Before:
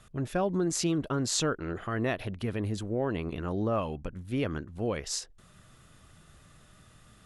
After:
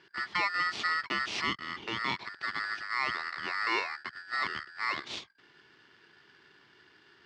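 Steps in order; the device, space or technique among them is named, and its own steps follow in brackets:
high-pass filter 59 Hz 6 dB per octave
0:01.26–0:02.39: low-shelf EQ 130 Hz −11.5 dB
ring modulator pedal into a guitar cabinet (ring modulator with a square carrier 1,600 Hz; loudspeaker in its box 94–4,300 Hz, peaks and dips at 360 Hz +5 dB, 520 Hz −5 dB, 1,500 Hz −5 dB)

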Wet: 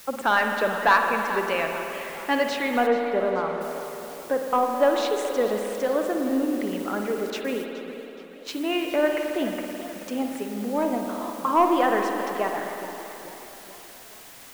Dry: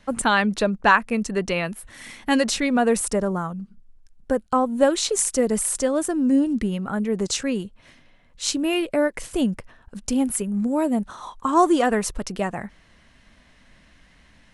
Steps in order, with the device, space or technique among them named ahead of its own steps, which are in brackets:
tape answering machine (band-pass filter 390–2,800 Hz; soft clipping −10 dBFS, distortion −18 dB; tape wow and flutter; white noise bed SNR 19 dB)
0:02.86–0:03.60: low-pass filter 1,900 Hz → 3,200 Hz 12 dB per octave
0:07.30–0:08.53: noise gate −34 dBFS, range −23 dB
spring reverb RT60 3.1 s, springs 53 ms, chirp 30 ms, DRR 3 dB
feedback echo with a swinging delay time 428 ms, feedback 54%, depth 179 cents, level −15.5 dB

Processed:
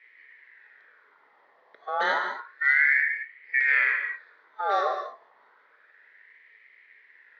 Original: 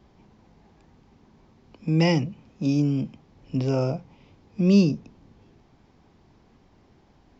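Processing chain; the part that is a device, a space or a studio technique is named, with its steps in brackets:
0:03.05–0:03.58: low-pass filter 1,600 Hz → 2,900 Hz 12 dB per octave
voice changer toy (ring modulator whose carrier an LFO sweeps 1,500 Hz, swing 40%, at 0.3 Hz; loudspeaker in its box 410–3,800 Hz, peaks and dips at 440 Hz +8 dB, 750 Hz −7 dB, 1,200 Hz −9 dB, 1,900 Hz +8 dB, 2,800 Hz −7 dB)
reverb whose tail is shaped and stops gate 240 ms flat, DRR 4.5 dB

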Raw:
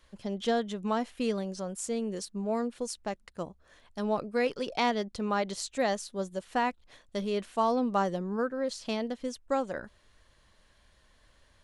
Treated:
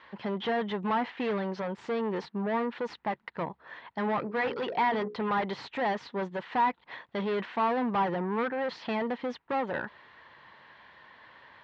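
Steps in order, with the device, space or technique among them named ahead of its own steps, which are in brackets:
0:04.21–0:05.18: mains-hum notches 60/120/180/240/300/360/420/480/540 Hz
overdrive pedal into a guitar cabinet (mid-hump overdrive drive 28 dB, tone 1,500 Hz, clips at −15 dBFS; loudspeaker in its box 86–4,000 Hz, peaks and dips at 140 Hz +6 dB, 590 Hz −5 dB, 920 Hz +8 dB, 1,900 Hz +6 dB)
level −6.5 dB

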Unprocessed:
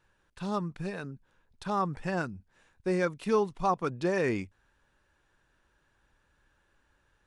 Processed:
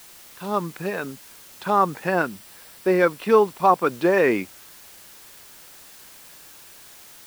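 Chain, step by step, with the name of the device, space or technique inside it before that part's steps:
dictaphone (band-pass filter 270–3,300 Hz; automatic gain control gain up to 11.5 dB; tape wow and flutter 25 cents; white noise bed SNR 22 dB)
0:02.08–0:03.91: notch filter 6,600 Hz, Q 13

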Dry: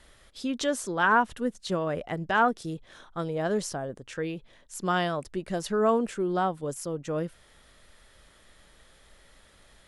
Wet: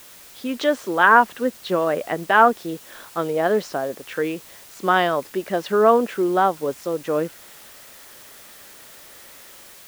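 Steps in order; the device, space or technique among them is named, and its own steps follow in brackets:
dictaphone (band-pass filter 290–3,100 Hz; automatic gain control gain up to 6.5 dB; tape wow and flutter; white noise bed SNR 23 dB)
level +3 dB

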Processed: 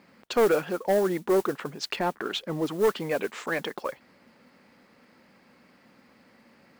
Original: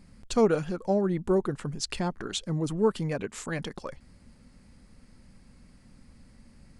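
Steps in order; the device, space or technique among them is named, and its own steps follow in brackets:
carbon microphone (band-pass filter 390–3,200 Hz; soft clipping −24 dBFS, distortion −12 dB; noise that follows the level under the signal 21 dB)
0:01.96–0:02.66: bass and treble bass +2 dB, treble −4 dB
level +8 dB

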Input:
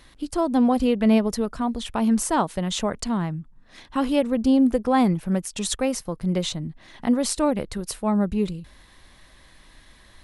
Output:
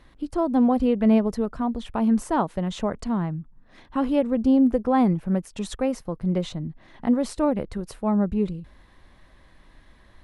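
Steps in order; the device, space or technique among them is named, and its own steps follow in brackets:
through cloth (high-shelf EQ 2,700 Hz −14.5 dB)

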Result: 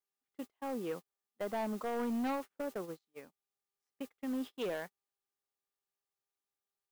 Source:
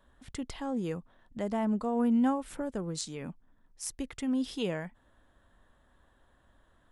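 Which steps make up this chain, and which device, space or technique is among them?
aircraft radio (band-pass filter 360–2,500 Hz; hard clipping −32 dBFS, distortion −11 dB; hum with harmonics 400 Hz, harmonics 3, −66 dBFS 0 dB per octave; white noise bed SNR 17 dB; noise gate −41 dBFS, range −38 dB)

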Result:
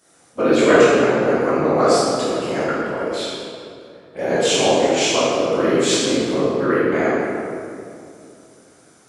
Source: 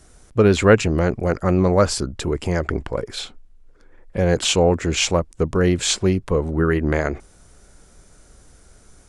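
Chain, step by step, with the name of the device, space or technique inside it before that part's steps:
whispering ghost (random phases in short frames; high-pass filter 300 Hz 12 dB per octave; convolution reverb RT60 2.5 s, pre-delay 12 ms, DRR −9.5 dB)
level −6 dB

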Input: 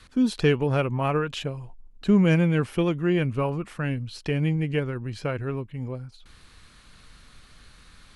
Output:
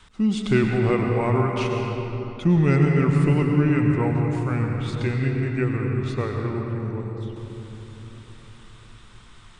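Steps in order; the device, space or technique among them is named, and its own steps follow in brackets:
slowed and reverbed (speed change −15%; convolution reverb RT60 3.8 s, pre-delay 94 ms, DRR 1 dB)

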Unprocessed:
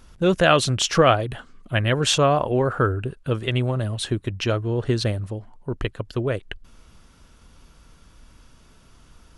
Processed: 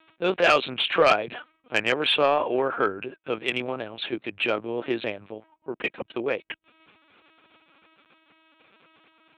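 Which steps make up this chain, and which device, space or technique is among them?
talking toy (linear-prediction vocoder at 8 kHz pitch kept; high-pass filter 350 Hz 12 dB per octave; parametric band 2,400 Hz +10 dB 0.25 octaves; soft clipping −9 dBFS, distortion −15 dB)

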